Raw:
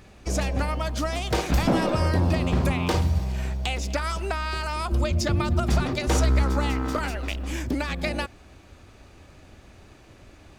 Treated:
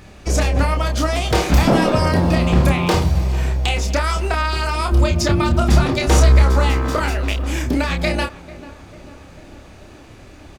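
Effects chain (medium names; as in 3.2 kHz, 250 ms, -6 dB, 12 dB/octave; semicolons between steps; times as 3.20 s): doubling 29 ms -5 dB; on a send: tape echo 445 ms, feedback 72%, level -16.5 dB, low-pass 1.6 kHz; on the sum: trim +6.5 dB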